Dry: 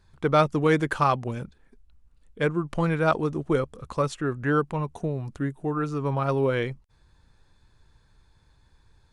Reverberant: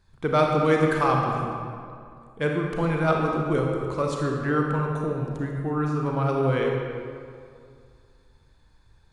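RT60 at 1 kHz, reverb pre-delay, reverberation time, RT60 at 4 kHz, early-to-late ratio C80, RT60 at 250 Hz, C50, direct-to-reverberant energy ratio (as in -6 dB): 2.3 s, 31 ms, 2.3 s, 1.4 s, 2.5 dB, 2.3 s, 1.0 dB, 0.0 dB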